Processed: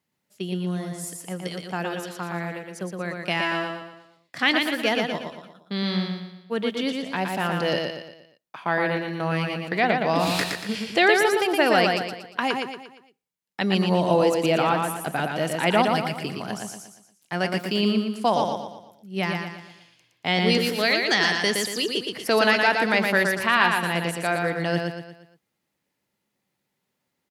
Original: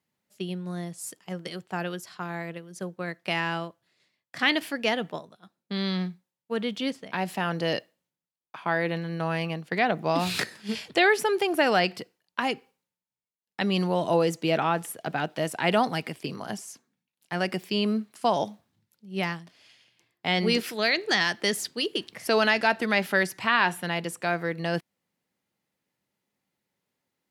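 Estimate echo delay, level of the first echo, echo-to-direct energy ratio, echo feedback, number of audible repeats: 117 ms, −4.0 dB, −3.0 dB, 43%, 5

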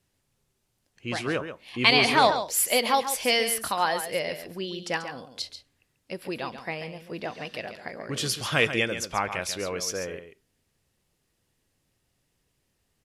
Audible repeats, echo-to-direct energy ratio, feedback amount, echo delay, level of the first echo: 1, −10.0 dB, repeats not evenly spaced, 138 ms, −10.0 dB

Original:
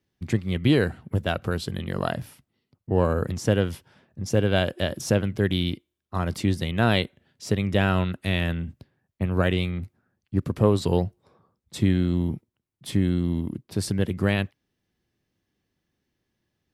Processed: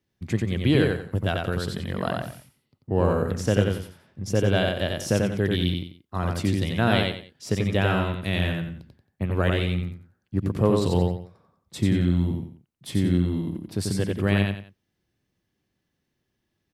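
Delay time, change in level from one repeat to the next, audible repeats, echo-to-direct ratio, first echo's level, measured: 90 ms, −10.5 dB, 3, −2.5 dB, −3.0 dB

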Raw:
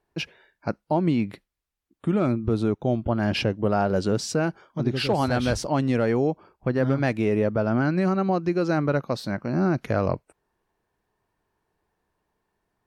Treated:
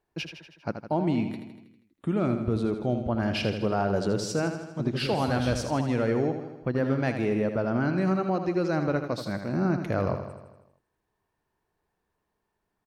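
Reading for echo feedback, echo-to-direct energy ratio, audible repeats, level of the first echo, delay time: 60%, −6.5 dB, 6, −8.5 dB, 80 ms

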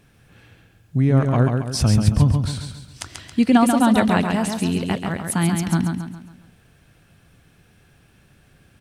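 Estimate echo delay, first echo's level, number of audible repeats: 137 ms, −5.0 dB, 5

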